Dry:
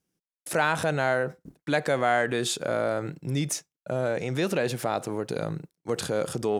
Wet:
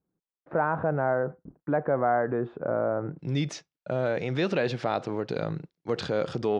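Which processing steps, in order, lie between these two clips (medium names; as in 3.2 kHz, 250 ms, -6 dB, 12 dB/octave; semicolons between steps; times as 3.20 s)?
low-pass 1.3 kHz 24 dB/octave, from 3.19 s 4.8 kHz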